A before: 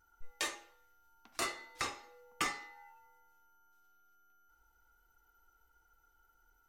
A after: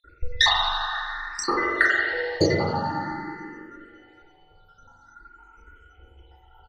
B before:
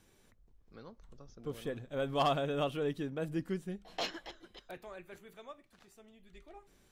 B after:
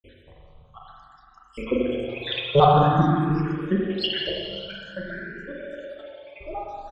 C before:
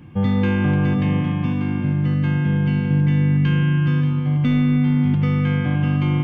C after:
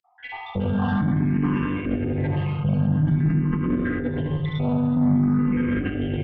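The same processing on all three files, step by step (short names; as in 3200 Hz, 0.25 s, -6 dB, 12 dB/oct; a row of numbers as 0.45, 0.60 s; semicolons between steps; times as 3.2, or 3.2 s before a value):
random spectral dropouts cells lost 82%; doubler 32 ms -9.5 dB; reverb removal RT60 1.4 s; spring tank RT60 2.5 s, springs 41/45 ms, chirp 45 ms, DRR -3.5 dB; in parallel at +2 dB: negative-ratio compressor -25 dBFS, ratio -0.5; on the sum: dynamic EQ 330 Hz, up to +4 dB, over -29 dBFS, Q 1.1; tube stage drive 12 dB, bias 0.55; air absorption 160 m; endless phaser +0.5 Hz; match loudness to -23 LUFS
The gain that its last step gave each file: +24.5, +18.5, -0.5 dB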